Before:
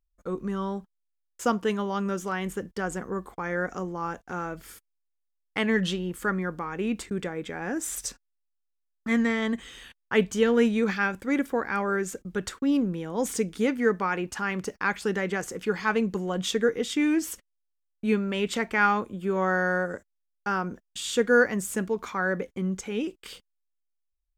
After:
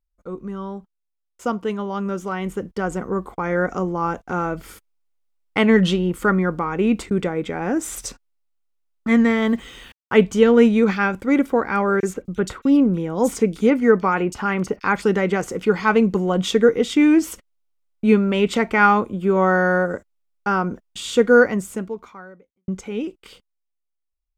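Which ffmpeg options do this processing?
-filter_complex "[0:a]asettb=1/sr,asplit=3[s0][s1][s2];[s0]atrim=end=9.274[s3];[s1]atrim=start=9.27:end=10.14,asetpts=PTS-STARTPTS,afade=t=in:d=0.004:c=qsin,afade=t=out:st=0.866:d=0.004:c=qsin,acrusher=bits=8:mix=0:aa=0.5[s4];[s2]atrim=start=10.136[s5];[s3][s4]acrossfade=d=0.004:c1=hsin:c2=qsin[s6];[s6][s5]acrossfade=d=0.004:c1=qsin:c2=hsin,asettb=1/sr,asplit=3[s7][s8][s9];[s7]atrim=end=12.004[s10];[s8]atrim=start=12:end=15.02,asetpts=PTS-STARTPTS,afade=t=in:d=0.004:c=qsin,afade=t=out:st=3.016:d=0.004:c=qsin,acrossover=split=3300[s11][s12];[s11]adelay=30[s13];[s13][s12]amix=inputs=2:normalize=0,atrim=end_sample=133182[s14];[s9]atrim=start=15.016[s15];[s10][s14]acrossfade=d=0.004:c1=hsin:c2=qsin[s16];[s16][s15]acrossfade=d=0.004:c1=qsin:c2=hsin,asplit=2[s17][s18];[s17]atrim=end=22.68,asetpts=PTS-STARTPTS,afade=t=out:st=21.47:d=1.21:c=qua[s19];[s18]atrim=start=22.68,asetpts=PTS-STARTPTS,afade=t=in:d=0.004:c=hsin[s20];[s19][s20]concat=n=2:v=0:a=1,highshelf=f=3000:g=-8.5,bandreject=f=1700:w=7.7,dynaudnorm=f=600:g=9:m=3.76"

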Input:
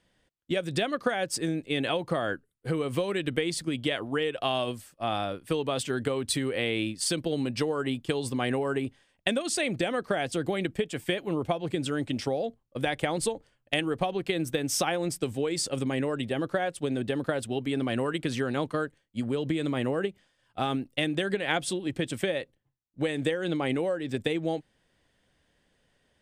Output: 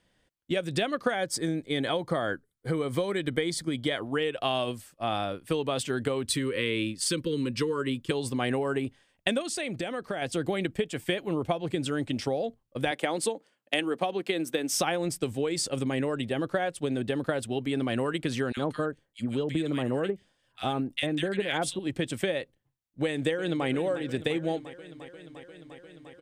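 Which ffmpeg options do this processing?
-filter_complex "[0:a]asettb=1/sr,asplit=3[s0][s1][s2];[s0]atrim=end=1.154[s3];[s1]atrim=start=1.15:end=4,asetpts=PTS-STARTPTS,afade=t=in:d=0.004:c=qsin,afade=t=out:st=2.846:d=0.004:c=qsin,asuperstop=centerf=2700:order=4:qfactor=5.8[s4];[s2]atrim=start=3.996[s5];[s3][s4]acrossfade=d=0.004:c1=hsin:c2=qsin[s6];[s6][s5]acrossfade=d=0.004:c1=qsin:c2=hsin,asettb=1/sr,asplit=3[s7][s8][s9];[s7]atrim=end=6.254[s10];[s8]atrim=start=6.25:end=8.11,asetpts=PTS-STARTPTS,afade=t=in:d=0.004:c=qsin,afade=t=out:st=1.856:d=0.004:c=qsin,asuperstop=centerf=710:order=20:qfactor=2.2[s11];[s9]atrim=start=8.106[s12];[s10][s11]acrossfade=d=0.004:c1=hsin:c2=qsin[s13];[s13][s12]acrossfade=d=0.004:c1=qsin:c2=hsin,asettb=1/sr,asplit=3[s14][s15][s16];[s14]atrim=end=9.434[s17];[s15]atrim=start=9.43:end=10.22,asetpts=PTS-STARTPTS,afade=t=in:d=0.004:c=qsin,afade=t=out:st=0.786:d=0.004:c=qsin,acompressor=threshold=0.0158:ratio=1.5:attack=3.2:release=140:knee=1:detection=peak[s18];[s16]atrim=start=10.216[s19];[s17][s18]acrossfade=d=0.004:c1=hsin:c2=qsin[s20];[s20][s19]acrossfade=d=0.004:c1=qsin:c2=hsin,asettb=1/sr,asplit=3[s21][s22][s23];[s21]atrim=end=12.914[s24];[s22]atrim=start=12.91:end=14.74,asetpts=PTS-STARTPTS,afade=t=in:d=0.004:c=qsin,afade=t=out:st=1.826:d=0.004:c=qsin,highpass=f=200:w=0.5412,highpass=f=200:w=1.3066[s25];[s23]atrim=start=14.736[s26];[s24][s25]acrossfade=d=0.004:c1=hsin:c2=qsin[s27];[s27][s26]acrossfade=d=0.004:c1=qsin:c2=hsin,asettb=1/sr,asplit=3[s28][s29][s30];[s28]atrim=end=18.524[s31];[s29]atrim=start=18.52:end=21.79,asetpts=PTS-STARTPTS,afade=t=in:d=0.004:c=qsin,afade=t=out:st=3.266:d=0.004:c=qsin,acrossover=split=1600[s32][s33];[s32]adelay=50[s34];[s34][s33]amix=inputs=2:normalize=0,atrim=end_sample=144207[s35];[s30]atrim=start=21.786[s36];[s31][s35]acrossfade=d=0.004:c1=hsin:c2=qsin[s37];[s37][s36]acrossfade=d=0.004:c1=qsin:c2=hsin,asplit=2[s38][s39];[s39]afade=t=in:st=23.03:d=0.01,afade=t=out:st=23.68:d=0.01,aecho=0:1:350|700|1050|1400|1750|2100|2450|2800|3150|3500|3850|4200:0.199526|0.169597|0.144158|0.122534|0.104154|0.0885308|0.0752512|0.0639635|0.054369|0.0462137|0.0392816|0.0333894[s40];[s38][s40]amix=inputs=2:normalize=0"

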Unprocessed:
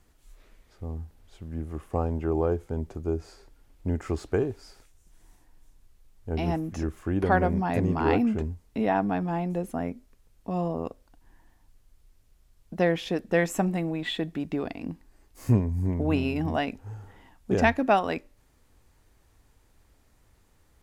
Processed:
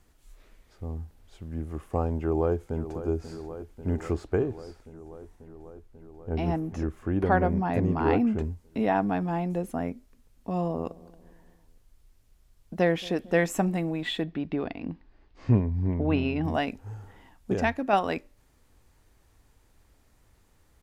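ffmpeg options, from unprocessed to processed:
-filter_complex "[0:a]asplit=2[s0][s1];[s1]afade=t=in:st=2.16:d=0.01,afade=t=out:st=3.08:d=0.01,aecho=0:1:540|1080|1620|2160|2700|3240|3780|4320|4860|5400|5940|6480:0.266073|0.212858|0.170286|0.136229|0.108983|0.0871866|0.0697493|0.0557994|0.0446396|0.0357116|0.0285693|0.0228555[s2];[s0][s2]amix=inputs=2:normalize=0,asettb=1/sr,asplit=3[s3][s4][s5];[s3]atrim=end=4.134[s6];[s4]atrim=start=4.13:end=8.39,asetpts=PTS-STARTPTS,afade=t=in:d=0.004:c=qsin,afade=t=out:st=4.256:d=0.004:c=qsin,highshelf=f=3100:g=-8[s7];[s5]atrim=start=8.386[s8];[s6][s7]acrossfade=d=0.004:c1=hsin:c2=qsin[s9];[s9][s8]acrossfade=d=0.004:c1=qsin:c2=hsin,asettb=1/sr,asplit=3[s10][s11][s12];[s10]atrim=end=9.924[s13];[s11]atrim=start=9.92:end=13.49,asetpts=PTS-STARTPTS,afade=t=in:d=0.004:c=qsin,afade=t=out:st=3.566:d=0.004:c=qsin,asplit=2[s14][s15];[s15]adelay=226,lowpass=f=1100:p=1,volume=0.0944,asplit=2[s16][s17];[s17]adelay=226,lowpass=f=1100:p=1,volume=0.52,asplit=2[s18][s19];[s19]adelay=226,lowpass=f=1100:p=1,volume=0.52,asplit=2[s20][s21];[s21]adelay=226,lowpass=f=1100:p=1,volume=0.52[s22];[s14][s16][s18][s20][s22]amix=inputs=5:normalize=0,atrim=end_sample=157437[s23];[s12]atrim=start=13.486[s24];[s13][s23]acrossfade=d=0.004:c1=hsin:c2=qsin[s25];[s25][s24]acrossfade=d=0.004:c1=qsin:c2=hsin,asettb=1/sr,asplit=3[s26][s27][s28];[s26]atrim=end=14.234[s29];[s27]atrim=start=14.23:end=16.44,asetpts=PTS-STARTPTS,afade=t=in:d=0.004:c=qsin,afade=t=out:st=2.206:d=0.004:c=qsin,lowpass=f=4200:w=0.5412,lowpass=f=4200:w=1.3066[s30];[s28]atrim=start=16.436[s31];[s29][s30]acrossfade=d=0.004:c1=hsin:c2=qsin[s32];[s32][s31]acrossfade=d=0.004:c1=qsin:c2=hsin,asplit=3[s33][s34][s35];[s33]atrim=end=17.532[s36];[s34]atrim=start=17.528:end=17.932,asetpts=PTS-STARTPTS,volume=0.596[s37];[s35]atrim=start=17.928[s38];[s36][s37]acrossfade=d=0.004:c1=hsin:c2=hsin[s39];[s39][s38]acrossfade=d=0.004:c1=hsin:c2=hsin"

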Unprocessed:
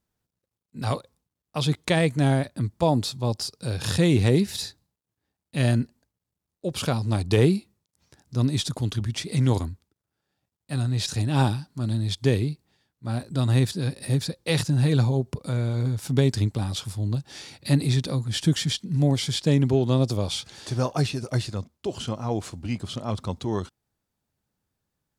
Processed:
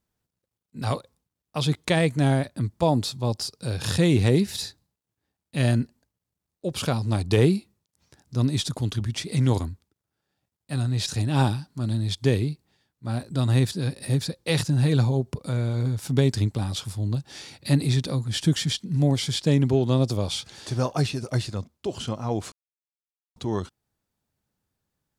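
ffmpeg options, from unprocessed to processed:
-filter_complex "[0:a]asplit=3[s0][s1][s2];[s0]atrim=end=22.52,asetpts=PTS-STARTPTS,afade=t=out:st=22.516:d=0.004:c=hsin[s3];[s1]atrim=start=22.52:end=23.36,asetpts=PTS-STARTPTS,volume=0[s4];[s2]atrim=start=23.36,asetpts=PTS-STARTPTS,afade=t=in:d=0.004:c=hsin[s5];[s3][s4][s5]concat=n=3:v=0:a=1"

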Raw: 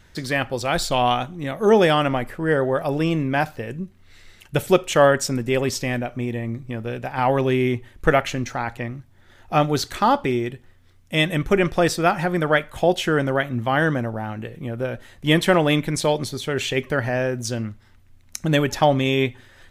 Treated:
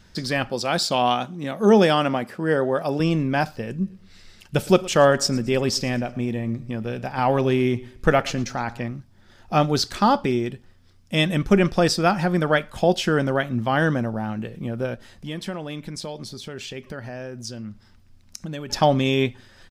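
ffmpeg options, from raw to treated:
-filter_complex "[0:a]asettb=1/sr,asplit=3[s0][s1][s2];[s0]atrim=end=0.494[s3];[s1]atrim=start=0.49:end=3,asetpts=PTS-STARTPTS,afade=t=in:d=0.004:c=qsin,afade=t=out:st=2.506:d=0.004:c=qsin,highpass=150[s4];[s2]atrim=start=2.996[s5];[s3][s4]acrossfade=d=0.004:c1=hsin:c2=qsin[s6];[s6][s5]acrossfade=d=0.004:c1=qsin:c2=hsin,asplit=3[s7][s8][s9];[s7]afade=t=out:st=3.81:d=0.02[s10];[s8]aecho=1:1:113|226|339:0.0944|0.033|0.0116,afade=t=in:st=3.81:d=0.02,afade=t=out:st=8.88:d=0.02[s11];[s9]afade=t=in:st=8.88:d=0.02[s12];[s10][s11][s12]amix=inputs=3:normalize=0,asettb=1/sr,asplit=3[s13][s14][s15];[s13]atrim=end=14.944[s16];[s14]atrim=start=14.94:end=18.7,asetpts=PTS-STARTPTS,afade=t=in:d=0.004:c=qsin,afade=t=out:st=3.756:d=0.004:c=qsin,acompressor=threshold=0.0112:ratio=2:attack=3.2:release=140:knee=1:detection=peak[s17];[s15]atrim=start=18.696[s18];[s16][s17]acrossfade=d=0.004:c1=hsin:c2=qsin[s19];[s19][s18]acrossfade=d=0.004:c1=qsin:c2=hsin,equalizer=f=200:t=o:w=0.33:g=9,equalizer=f=2000:t=o:w=0.33:g=-4,equalizer=f=5000:t=o:w=0.33:g=9,equalizer=f=12500:t=o:w=0.33:g=-5,volume=0.891"

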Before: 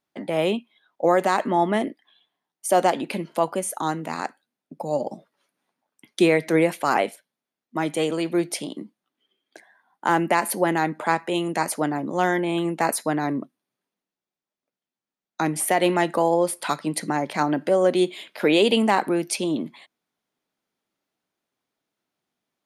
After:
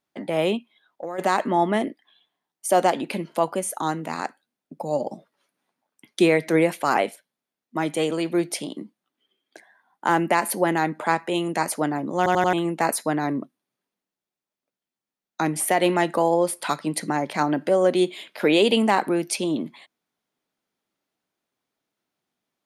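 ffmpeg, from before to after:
-filter_complex "[0:a]asplit=3[s0][s1][s2];[s0]afade=t=out:st=0.57:d=0.02[s3];[s1]acompressor=threshold=0.0355:ratio=5:attack=3.2:release=140:knee=1:detection=peak,afade=t=in:st=0.57:d=0.02,afade=t=out:st=1.18:d=0.02[s4];[s2]afade=t=in:st=1.18:d=0.02[s5];[s3][s4][s5]amix=inputs=3:normalize=0,asplit=5[s6][s7][s8][s9][s10];[s6]atrim=end=12.262[s11];[s7]atrim=start=12.168:end=12.262[s12];[s8]atrim=start=12.168:end=12.262[s13];[s9]atrim=start=12.168:end=12.262[s14];[s10]atrim=start=12.528[s15];[s11][s12]acrossfade=d=0.004:c1=hsin:c2=hsin[s16];[s16][s13]acrossfade=d=0.004:c1=hsin:c2=hsin[s17];[s17][s14]acrossfade=d=0.004:c1=hsin:c2=hsin[s18];[s18][s15]acrossfade=d=0.004:c1=hsin:c2=hsin"

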